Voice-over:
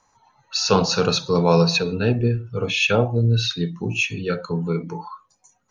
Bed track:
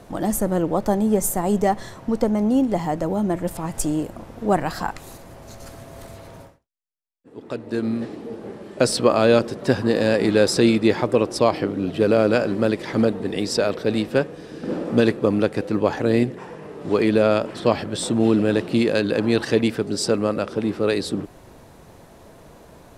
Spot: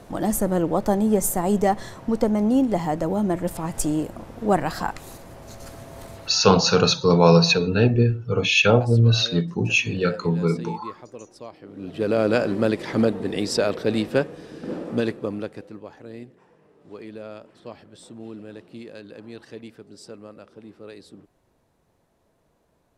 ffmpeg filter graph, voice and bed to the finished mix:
ffmpeg -i stem1.wav -i stem2.wav -filter_complex "[0:a]adelay=5750,volume=2dB[link_01];[1:a]volume=20.5dB,afade=type=out:start_time=6.22:duration=0.26:silence=0.0841395,afade=type=in:start_time=11.63:duration=0.76:silence=0.0891251,afade=type=out:start_time=14.11:duration=1.72:silence=0.105925[link_02];[link_01][link_02]amix=inputs=2:normalize=0" out.wav

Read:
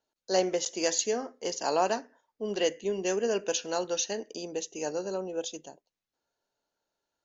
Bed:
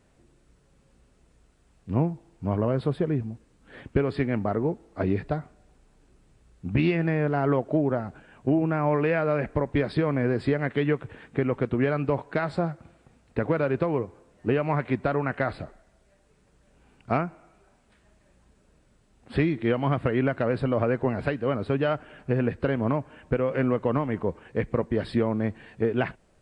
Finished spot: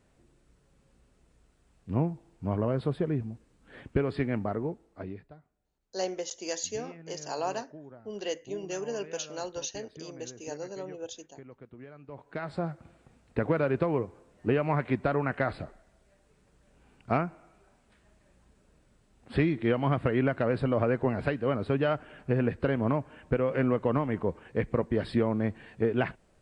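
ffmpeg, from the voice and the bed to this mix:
ffmpeg -i stem1.wav -i stem2.wav -filter_complex "[0:a]adelay=5650,volume=-6dB[link_01];[1:a]volume=18dB,afade=type=out:start_time=4.33:duration=0.95:silence=0.1,afade=type=in:start_time=12.07:duration=0.87:silence=0.0841395[link_02];[link_01][link_02]amix=inputs=2:normalize=0" out.wav

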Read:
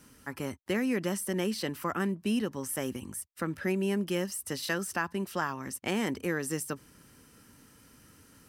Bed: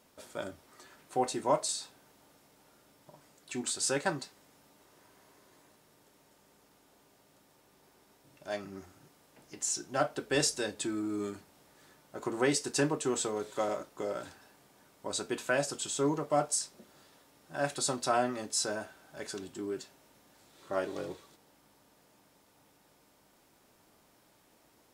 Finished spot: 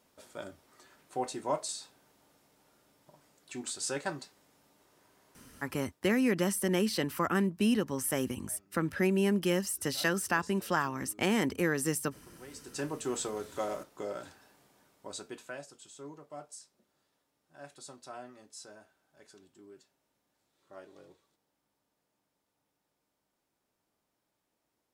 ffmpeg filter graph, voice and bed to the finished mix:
ffmpeg -i stem1.wav -i stem2.wav -filter_complex "[0:a]adelay=5350,volume=2dB[link_01];[1:a]volume=16dB,afade=type=out:start_time=5.82:duration=0.23:silence=0.11885,afade=type=in:start_time=12.5:duration=0.63:silence=0.1,afade=type=out:start_time=14.6:duration=1.07:silence=0.188365[link_02];[link_01][link_02]amix=inputs=2:normalize=0" out.wav

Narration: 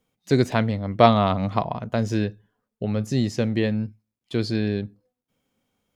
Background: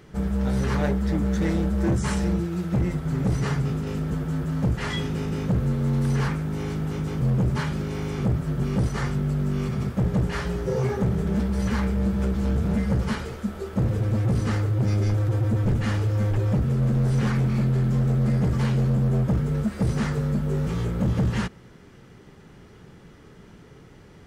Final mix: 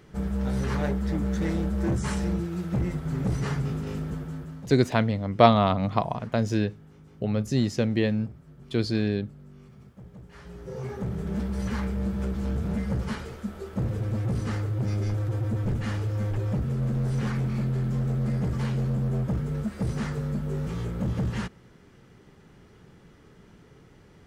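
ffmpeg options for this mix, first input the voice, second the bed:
ffmpeg -i stem1.wav -i stem2.wav -filter_complex "[0:a]adelay=4400,volume=-1.5dB[link_01];[1:a]volume=15dB,afade=type=out:start_time=3.93:duration=0.81:silence=0.1,afade=type=in:start_time=10.28:duration=1.17:silence=0.11885[link_02];[link_01][link_02]amix=inputs=2:normalize=0" out.wav

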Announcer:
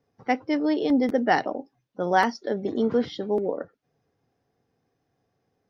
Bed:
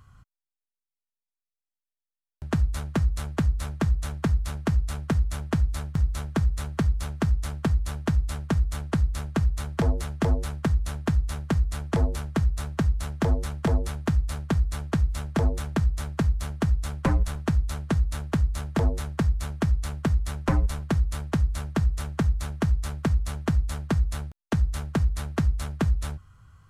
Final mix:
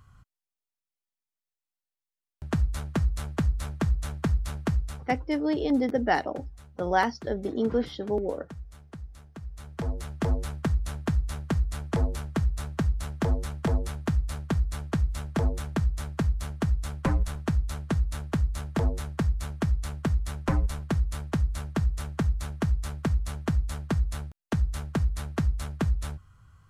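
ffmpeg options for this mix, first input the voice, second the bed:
ffmpeg -i stem1.wav -i stem2.wav -filter_complex "[0:a]adelay=4800,volume=-3dB[link_01];[1:a]volume=13.5dB,afade=type=out:start_time=4.67:duration=0.56:silence=0.158489,afade=type=in:start_time=9.42:duration=0.94:silence=0.16788[link_02];[link_01][link_02]amix=inputs=2:normalize=0" out.wav

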